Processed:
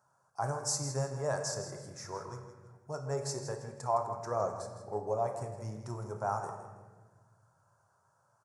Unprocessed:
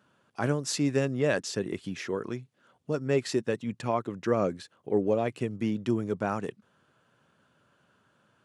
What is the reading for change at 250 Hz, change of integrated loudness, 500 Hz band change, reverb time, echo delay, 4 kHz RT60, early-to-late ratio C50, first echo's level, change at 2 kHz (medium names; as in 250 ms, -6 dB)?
-16.5 dB, -6.5 dB, -7.0 dB, 1.4 s, 162 ms, 1.0 s, 5.5 dB, -11.0 dB, -11.0 dB